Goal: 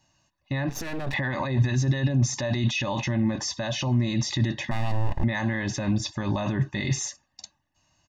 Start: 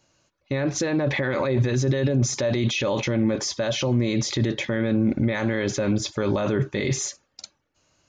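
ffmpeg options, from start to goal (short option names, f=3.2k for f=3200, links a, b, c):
-filter_complex "[0:a]asettb=1/sr,asplit=3[a][b][c];[a]atrim=end=4.714[d];[b]atrim=start=4.71:end=5.24,asetpts=PTS-STARTPTS,afade=t=in:d=0.004:c=qsin,afade=t=out:st=0.526:d=0.004:c=qsin,aeval=exprs='abs(val(0))':c=same[e];[c]atrim=start=5.236[f];[d][e]acrossfade=d=0.004:c1=hsin:c2=qsin[g];[g][f]acrossfade=d=0.004:c1=qsin:c2=hsin,aecho=1:1:1.1:0.91,asettb=1/sr,asplit=3[h][i][j];[h]atrim=end=0.694[k];[i]atrim=start=0.69:end=1.14,asetpts=PTS-STARTPTS,afade=t=in:d=0.004:c=qsin,afade=t=out:st=0.446:d=0.004:c=qsin,aeval=exprs='max(val(0),0)':c=same[l];[j]atrim=start=1.136[m];[k][l]acrossfade=d=0.004:c1=hsin:c2=qsin[n];[n][m]acrossfade=d=0.004:c1=qsin:c2=hsin,volume=-4.5dB"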